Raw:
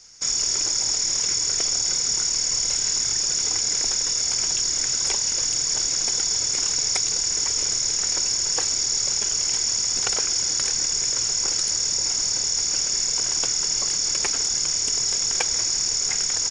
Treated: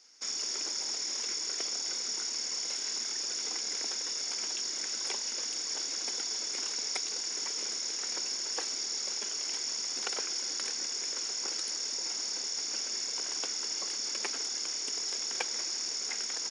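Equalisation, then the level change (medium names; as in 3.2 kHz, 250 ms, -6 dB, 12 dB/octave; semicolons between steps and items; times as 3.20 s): Chebyshev high-pass 220 Hz, order 5; peaking EQ 7.3 kHz -9 dB 0.56 oct; -7.0 dB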